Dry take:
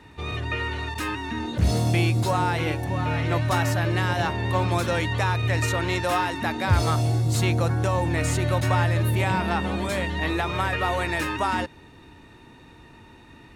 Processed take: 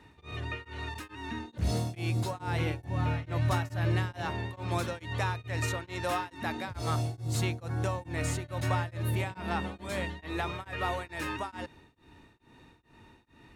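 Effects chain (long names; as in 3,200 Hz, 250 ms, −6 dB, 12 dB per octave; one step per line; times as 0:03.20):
0:02.47–0:04.13: low-shelf EQ 120 Hz +9 dB
tremolo along a rectified sine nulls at 2.3 Hz
level −6.5 dB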